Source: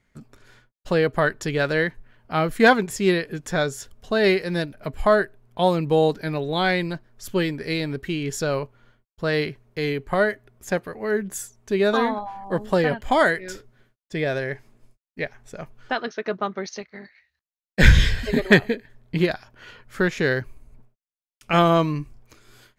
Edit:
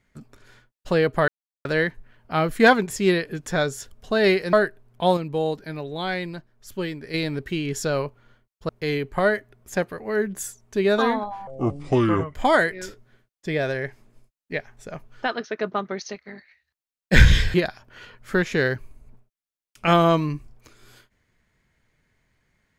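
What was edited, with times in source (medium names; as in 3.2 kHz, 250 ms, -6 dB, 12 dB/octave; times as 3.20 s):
1.28–1.65 s: mute
4.53–5.10 s: delete
5.74–7.71 s: gain -6 dB
9.26–9.64 s: delete
12.42–13.02 s: speed 68%
18.21–19.20 s: delete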